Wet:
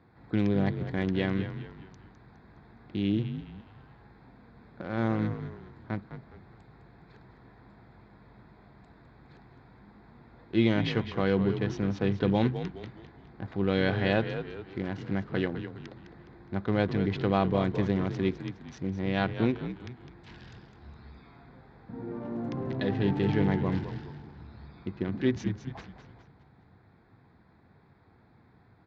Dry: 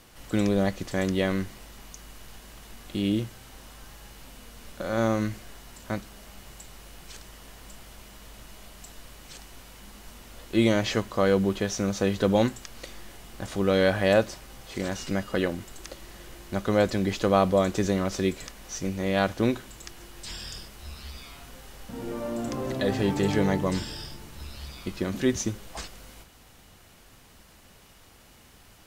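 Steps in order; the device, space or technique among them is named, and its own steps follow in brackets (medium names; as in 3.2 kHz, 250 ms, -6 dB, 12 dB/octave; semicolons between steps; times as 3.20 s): local Wiener filter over 15 samples; frequency-shifting delay pedal into a guitar cabinet (frequency-shifting echo 207 ms, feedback 42%, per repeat -66 Hz, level -10 dB; cabinet simulation 96–4000 Hz, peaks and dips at 100 Hz +5 dB, 140 Hz +4 dB, 570 Hz -9 dB, 1.2 kHz -5 dB); trim -2 dB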